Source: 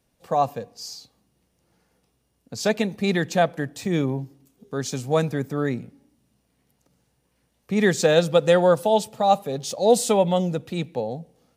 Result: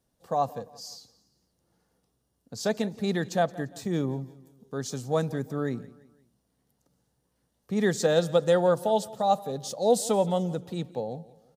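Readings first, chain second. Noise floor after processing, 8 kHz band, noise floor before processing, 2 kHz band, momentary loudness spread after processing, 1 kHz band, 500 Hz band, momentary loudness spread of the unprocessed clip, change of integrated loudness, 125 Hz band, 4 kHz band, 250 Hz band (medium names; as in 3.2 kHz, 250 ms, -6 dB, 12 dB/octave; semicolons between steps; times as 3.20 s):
-76 dBFS, -5.0 dB, -70 dBFS, -8.0 dB, 15 LU, -5.0 dB, -5.0 dB, 16 LU, -5.0 dB, -5.0 dB, -6.5 dB, -5.0 dB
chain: peaking EQ 2.4 kHz -9 dB 0.56 oct; on a send: feedback delay 172 ms, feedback 41%, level -20 dB; on the sum: trim -5 dB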